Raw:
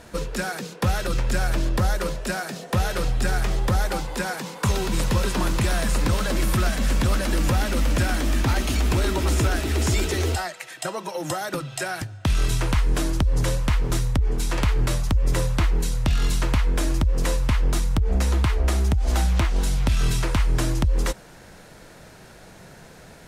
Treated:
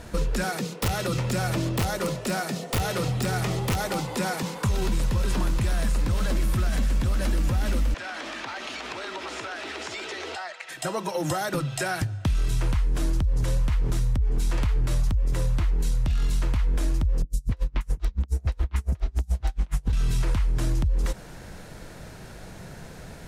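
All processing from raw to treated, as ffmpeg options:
-filter_complex "[0:a]asettb=1/sr,asplit=3[s0][s1][s2];[s0]atrim=end=0.444[s3];[s1]atrim=start=0.44:end=4.43,asetpts=PTS-STARTPTS,afade=t=in:d=0.004:c=qsin,afade=t=out:st=3.986:d=0.004:c=qsin,highpass=f=90:w=0.5412,highpass=f=90:w=1.3066,aeval=exprs='(mod(5.96*val(0)+1,2)-1)/5.96':c=same,bandreject=f=1600:w=8.6[s4];[s2]atrim=start=4.426[s5];[s3][s4]acrossfade=d=0.004:c1=hsin:c2=qsin[s6];[s6][s5]acrossfade=d=0.004:c1=qsin:c2=hsin,asettb=1/sr,asplit=3[s7][s8][s9];[s7]atrim=end=7.944[s10];[s8]atrim=start=7.94:end=10.69,asetpts=PTS-STARTPTS,afade=t=in:d=0.004:c=qsin,afade=t=out:st=2.746:d=0.004:c=qsin,highpass=650,lowpass=4300,acompressor=threshold=0.0251:ratio=5:attack=3.2:release=140:knee=1:detection=peak[s11];[s9]atrim=start=10.686[s12];[s10][s11]acrossfade=d=0.004:c1=hsin:c2=qsin[s13];[s13][s12]acrossfade=d=0.004:c1=qsin:c2=hsin,asettb=1/sr,asplit=3[s14][s15][s16];[s14]atrim=end=17.224[s17];[s15]atrim=start=17.22:end=19.93,asetpts=PTS-STARTPTS,afade=t=in:d=0.004:c=qsin,afade=t=out:st=2.706:d=0.004:c=qsin,acrossover=split=310|5000[s18][s19][s20];[s20]adelay=80[s21];[s19]adelay=270[s22];[s18][s22][s21]amix=inputs=3:normalize=0,atrim=end_sample=119511,aeval=exprs='val(0)*pow(10,-38*(0.5-0.5*cos(2*PI*7.1*n/s))/20)':c=same[s23];[s16]atrim=start=19.926[s24];[s17][s23]acrossfade=d=0.004:c1=hsin:c2=qsin[s25];[s25][s24]acrossfade=d=0.004:c1=qsin:c2=hsin,alimiter=limit=0.106:level=0:latency=1:release=15,lowshelf=f=170:g=8,acompressor=threshold=0.0891:ratio=6,volume=1.12"

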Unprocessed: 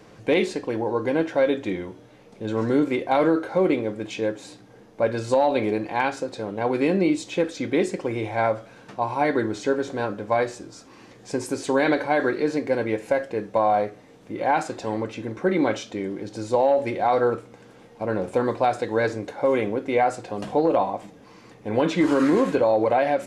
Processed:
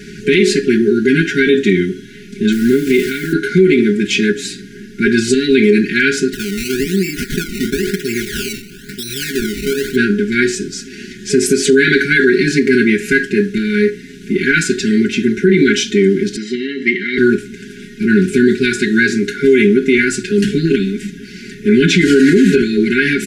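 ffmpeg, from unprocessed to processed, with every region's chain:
-filter_complex "[0:a]asettb=1/sr,asplit=3[s0][s1][s2];[s0]atrim=end=2.524[s3];[s1]atrim=start=2.52:end=3.33,asetpts=PTS-STARTPTS,afade=t=in:d=0.004:c=qsin,afade=t=out:st=0.806:d=0.004:c=qsin,aeval=exprs='val(0)+0.5*0.0178*sgn(val(0))':c=same,acompressor=threshold=0.0562:ratio=12:attack=3.2:release=140:knee=1:detection=peak,acrusher=bits=9:dc=4:mix=0:aa=0.000001[s4];[s2]atrim=start=3.326[s5];[s3][s4]acrossfade=d=0.004:c1=hsin:c2=qsin[s6];[s6][s5]acrossfade=d=0.004:c1=qsin:c2=hsin,asettb=1/sr,asplit=3[s7][s8][s9];[s7]atrim=end=6.334[s10];[s8]atrim=start=6.33:end=9.96,asetpts=PTS-STARTPTS,afade=t=in:d=0.004:c=qsin,afade=t=out:st=3.626:d=0.004:c=qsin,equalizer=f=370:w=0.38:g=-7,acrusher=samples=18:mix=1:aa=0.000001:lfo=1:lforange=18:lforate=1,acompressor=threshold=0.0316:ratio=12:attack=3.2:release=140:knee=1:detection=peak[s11];[s9]atrim=start=9.956[s12];[s10][s11]acrossfade=d=0.004:c1=hsin:c2=qsin[s13];[s13][s12]acrossfade=d=0.004:c1=qsin:c2=hsin,asettb=1/sr,asplit=3[s14][s15][s16];[s14]atrim=end=16.364[s17];[s15]atrim=start=16.36:end=17.18,asetpts=PTS-STARTPTS,afade=t=in:d=0.004:c=qsin,afade=t=out:st=0.816:d=0.004:c=qsin,highpass=200,lowpass=2900,lowshelf=f=350:g=-10.5,aecho=1:1:1:0.74,atrim=end_sample=36162[s18];[s16]atrim=start=17.176[s19];[s17][s18]acrossfade=d=0.004:c1=hsin:c2=qsin[s20];[s20][s19]acrossfade=d=0.004:c1=qsin:c2=hsin,afftfilt=real='re*(1-between(b*sr/4096,420,1400))':imag='im*(1-between(b*sr/4096,420,1400))':win_size=4096:overlap=0.75,aecho=1:1:4.8:0.98,alimiter=level_in=7.08:limit=0.891:release=50:level=0:latency=1,volume=0.891"

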